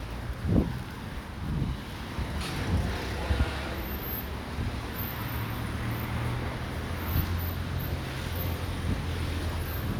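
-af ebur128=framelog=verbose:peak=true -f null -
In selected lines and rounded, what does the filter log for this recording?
Integrated loudness:
  I:         -32.4 LUFS
  Threshold: -42.4 LUFS
Loudness range:
  LRA:         1.2 LU
  Threshold: -52.5 LUFS
  LRA low:   -33.4 LUFS
  LRA high:  -32.1 LUFS
True peak:
  Peak:      -11.1 dBFS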